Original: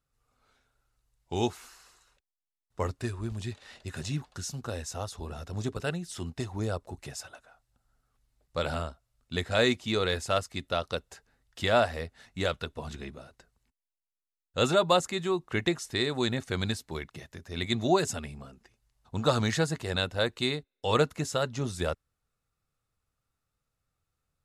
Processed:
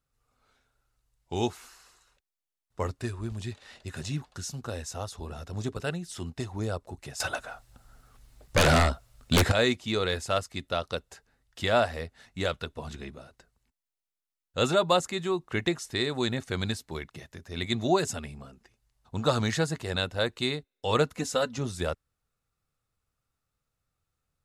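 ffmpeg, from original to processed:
ffmpeg -i in.wav -filter_complex "[0:a]asettb=1/sr,asplit=3[link_01][link_02][link_03];[link_01]atrim=end=7.204[link_04];[link_02]atrim=start=7.2:end=9.52,asetpts=PTS-STARTPTS,afade=type=in:duration=0.004:curve=qsin,afade=type=out:start_time=2.316:duration=0.004:curve=qsin,aeval=exprs='0.15*sin(PI/2*4.47*val(0)/0.15)':channel_layout=same[link_05];[link_03]atrim=start=9.516[link_06];[link_04][link_05]acrossfade=duration=0.004:curve1=hsin:curve2=qsin[link_07];[link_07][link_06]acrossfade=duration=0.004:curve1=qsin:curve2=hsin,asettb=1/sr,asplit=3[link_08][link_09][link_10];[link_08]atrim=end=21.164[link_11];[link_09]atrim=start=21.16:end=21.58,asetpts=PTS-STARTPTS,afade=type=in:duration=0.004:curve=qsin,afade=type=out:start_time=0.416:duration=0.004:curve=qsin,aecho=1:1:4:0.75,atrim=end_sample=18522[link_12];[link_10]atrim=start=21.576[link_13];[link_11][link_12]acrossfade=duration=0.004:curve1=hsin:curve2=qsin[link_14];[link_14][link_13]acrossfade=duration=0.004:curve1=qsin:curve2=hsin" out.wav

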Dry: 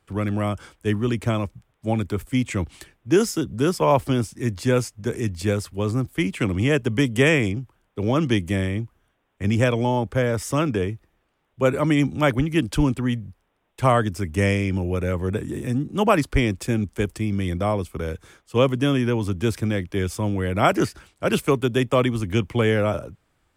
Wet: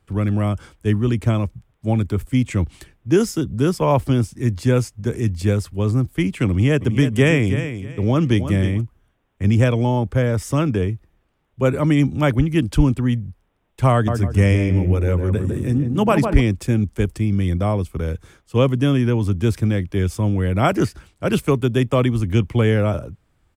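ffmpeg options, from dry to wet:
ffmpeg -i in.wav -filter_complex "[0:a]asplit=3[link_01][link_02][link_03];[link_01]afade=type=out:start_time=6.8:duration=0.02[link_04];[link_02]aecho=1:1:317|634|951:0.299|0.0687|0.0158,afade=type=in:start_time=6.8:duration=0.02,afade=type=out:start_time=8.8:duration=0.02[link_05];[link_03]afade=type=in:start_time=8.8:duration=0.02[link_06];[link_04][link_05][link_06]amix=inputs=3:normalize=0,asettb=1/sr,asplit=3[link_07][link_08][link_09];[link_07]atrim=end=13.924[link_10];[link_08]atrim=start=13.92:end=16.41,asetpts=PTS-STARTPTS,afade=type=in:duration=0.004:curve=qsin,afade=type=out:start_time=2.486:duration=0.004:curve=qsin,asplit=2[link_11][link_12];[link_12]adelay=154,lowpass=frequency=1200:poles=1,volume=-4.5dB,asplit=2[link_13][link_14];[link_14]adelay=154,lowpass=frequency=1200:poles=1,volume=0.42,asplit=2[link_15][link_16];[link_16]adelay=154,lowpass=frequency=1200:poles=1,volume=0.42,asplit=2[link_17][link_18];[link_18]adelay=154,lowpass=frequency=1200:poles=1,volume=0.42,asplit=2[link_19][link_20];[link_20]adelay=154,lowpass=frequency=1200:poles=1,volume=0.42[link_21];[link_11][link_13][link_15][link_17][link_19][link_21]amix=inputs=6:normalize=0,atrim=end_sample=109809[link_22];[link_09]atrim=start=16.406[link_23];[link_10][link_22]acrossfade=duration=0.004:curve1=hsin:curve2=qsin[link_24];[link_24][link_23]acrossfade=duration=0.004:curve1=qsin:curve2=hsin,lowshelf=frequency=220:gain=9.5,volume=-1dB" out.wav

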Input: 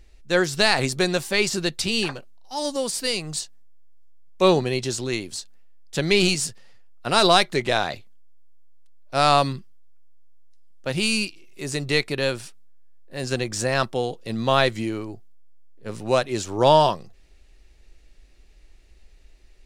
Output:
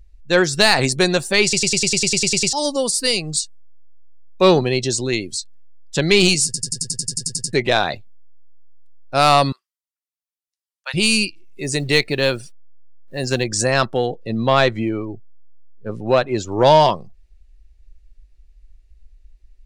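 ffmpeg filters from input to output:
ffmpeg -i in.wav -filter_complex "[0:a]asettb=1/sr,asplit=3[link_01][link_02][link_03];[link_01]atrim=end=9.524[link_04];[link_02]atrim=start=9.52:end=10.94,asetpts=PTS-STARTPTS,afade=type=in:duration=0.004:curve=qsin,afade=type=out:start_time=1.416:duration=0.004:curve=qsin,highpass=frequency=910:width=0.5412,highpass=frequency=910:width=1.3066[link_05];[link_03]atrim=start=10.936[link_06];[link_04][link_05]acrossfade=duration=0.004:curve1=hsin:curve2=qsin[link_07];[link_07][link_06]acrossfade=duration=0.004:curve1=qsin:curve2=hsin,asettb=1/sr,asplit=3[link_08][link_09][link_10];[link_08]atrim=end=11.634[link_11];[link_09]atrim=start=11.63:end=13.44,asetpts=PTS-STARTPTS,afade=type=in:duration=0.004:curve=qsin,afade=type=out:start_time=1.806:duration=0.004:curve=qsin,acrusher=bits=4:mode=log:mix=0:aa=0.000001[link_12];[link_10]atrim=start=13.436[link_13];[link_11][link_12]acrossfade=duration=0.004:curve1=hsin:curve2=qsin[link_14];[link_14][link_13]acrossfade=duration=0.004:curve1=qsin:curve2=hsin,asettb=1/sr,asplit=3[link_15][link_16][link_17];[link_15]atrim=end=14.064[link_18];[link_16]atrim=start=14.06:end=16.52,asetpts=PTS-STARTPTS,afade=type=in:duration=0.004:curve=qsin,afade=type=out:start_time=2.456:duration=0.004:curve=qsin,lowpass=frequency=3600:poles=1[link_19];[link_17]atrim=start=16.516[link_20];[link_18][link_19]acrossfade=duration=0.004:curve1=hsin:curve2=qsin[link_21];[link_21][link_20]acrossfade=duration=0.004:curve1=qsin:curve2=hsin,asplit=24[link_22][link_23][link_24][link_25][link_26][link_27][link_28][link_29][link_30][link_31][link_32][link_33][link_34][link_35][link_36][link_37][link_38][link_39][link_40][link_41][link_42][link_43][link_44][link_45];[link_22]atrim=end=1.532[link_46];[link_23]atrim=start=1.428:end=1.532[link_47];[link_24]atrim=start=1.428:end=1.532[link_48];[link_25]atrim=start=1.428:end=1.532[link_49];[link_26]atrim=start=1.428:end=1.532[link_50];[link_27]atrim=start=1.428:end=1.532[link_51];[link_28]atrim=start=1.428:end=1.532[link_52];[link_29]atrim=start=1.428:end=1.532[link_53];[link_30]atrim=start=1.428:end=1.532[link_54];[link_31]atrim=start=1.428:end=1.532[link_55];[link_32]atrim=start=1.428:end=1.532[link_56];[link_33]atrim=start=2.528:end=6.542[link_57];[link_34]atrim=start=6.448:end=6.542[link_58];[link_35]atrim=start=6.448:end=6.542[link_59];[link_36]atrim=start=6.448:end=6.542[link_60];[link_37]atrim=start=6.448:end=6.542[link_61];[link_38]atrim=start=6.448:end=6.542[link_62];[link_39]atrim=start=6.448:end=6.542[link_63];[link_40]atrim=start=6.448:end=6.542[link_64];[link_41]atrim=start=6.448:end=6.542[link_65];[link_42]atrim=start=6.448:end=6.542[link_66];[link_43]atrim=start=6.448:end=6.542[link_67];[link_44]atrim=start=6.448:end=6.542[link_68];[link_45]atrim=start=7.528[link_69];[link_46][link_47]acrossfade=duration=0.004:curve1=hsin:curve2=hsin[link_70];[link_70][link_48]acrossfade=duration=0.004:curve1=hsin:curve2=hsin[link_71];[link_71][link_49]acrossfade=duration=0.004:curve1=hsin:curve2=hsin[link_72];[link_72][link_50]acrossfade=duration=0.004:curve1=hsin:curve2=hsin[link_73];[link_73][link_51]acrossfade=duration=0.004:curve1=hsin:curve2=hsin[link_74];[link_74][link_52]acrossfade=duration=0.004:curve1=hsin:curve2=hsin[link_75];[link_75][link_53]acrossfade=duration=0.004:curve1=hsin:curve2=hsin[link_76];[link_76][link_54]acrossfade=duration=0.004:curve1=hsin:curve2=hsin[link_77];[link_77][link_55]acrossfade=duration=0.004:curve1=hsin:curve2=hsin[link_78];[link_78][link_56]acrossfade=duration=0.004:curve1=hsin:curve2=hsin[link_79];[link_79][link_57]acrossfade=duration=0.004:curve1=hsin:curve2=hsin[link_80];[link_80][link_58]acrossfade=duration=0.004:curve1=hsin:curve2=hsin[link_81];[link_81][link_59]acrossfade=duration=0.004:curve1=hsin:curve2=hsin[link_82];[link_82][link_60]acrossfade=duration=0.004:curve1=hsin:curve2=hsin[link_83];[link_83][link_61]acrossfade=duration=0.004:curve1=hsin:curve2=hsin[link_84];[link_84][link_62]acrossfade=duration=0.004:curve1=hsin:curve2=hsin[link_85];[link_85][link_63]acrossfade=duration=0.004:curve1=hsin:curve2=hsin[link_86];[link_86][link_64]acrossfade=duration=0.004:curve1=hsin:curve2=hsin[link_87];[link_87][link_65]acrossfade=duration=0.004:curve1=hsin:curve2=hsin[link_88];[link_88][link_66]acrossfade=duration=0.004:curve1=hsin:curve2=hsin[link_89];[link_89][link_67]acrossfade=duration=0.004:curve1=hsin:curve2=hsin[link_90];[link_90][link_68]acrossfade=duration=0.004:curve1=hsin:curve2=hsin[link_91];[link_91][link_69]acrossfade=duration=0.004:curve1=hsin:curve2=hsin,afftdn=noise_reduction=19:noise_floor=-38,acontrast=65,highshelf=frequency=5100:gain=4.5,volume=-1dB" out.wav

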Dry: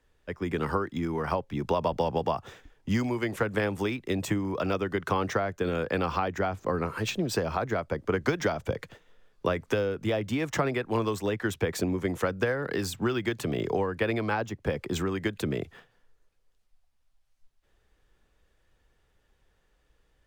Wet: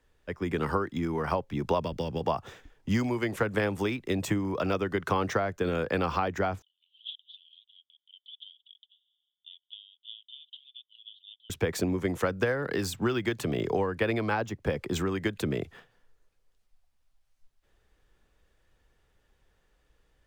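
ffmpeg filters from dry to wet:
ffmpeg -i in.wav -filter_complex "[0:a]asettb=1/sr,asplit=3[link_01][link_02][link_03];[link_01]atrim=end=1.804[link_04];[link_02]atrim=start=1.8:end=2.21,asetpts=PTS-STARTPTS,afade=type=in:duration=0.004:curve=qsin,afade=type=out:start_time=0.406:duration=0.004:curve=qsin,equalizer=frequency=810:width_type=o:width=1.3:gain=-12.5[link_05];[link_03]atrim=start=2.206[link_06];[link_04][link_05]acrossfade=duration=0.004:curve1=hsin:curve2=qsin[link_07];[link_07][link_06]acrossfade=duration=0.004:curve1=qsin:curve2=hsin,asettb=1/sr,asplit=3[link_08][link_09][link_10];[link_08]atrim=end=6.624[link_11];[link_09]atrim=start=6.62:end=11.5,asetpts=PTS-STARTPTS,afade=type=in:duration=0.004:curve=qsin,afade=type=out:start_time=4.876:duration=0.004:curve=qsin,asuperpass=centerf=3300:order=8:qfactor=4.9[link_12];[link_10]atrim=start=11.496[link_13];[link_11][link_12]acrossfade=duration=0.004:curve1=hsin:curve2=qsin[link_14];[link_14][link_13]acrossfade=duration=0.004:curve1=qsin:curve2=hsin" out.wav

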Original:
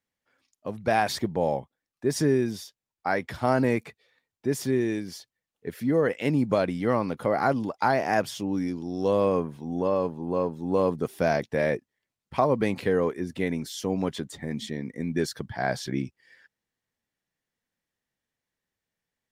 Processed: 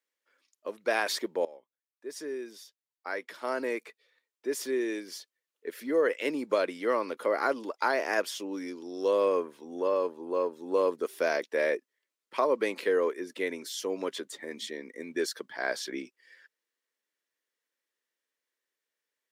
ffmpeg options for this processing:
ffmpeg -i in.wav -filter_complex "[0:a]asplit=2[link_01][link_02];[link_01]atrim=end=1.45,asetpts=PTS-STARTPTS,afade=type=out:start_time=1.446:duration=0.004:curve=hsin:silence=0.105925[link_03];[link_02]atrim=start=1.45,asetpts=PTS-STARTPTS,afade=type=in:duration=3.69:silence=0.105925[link_04];[link_03][link_04]concat=n=2:v=0:a=1,highpass=frequency=350:width=0.5412,highpass=frequency=350:width=1.3066,equalizer=frequency=760:width_type=o:width=0.36:gain=-11" out.wav

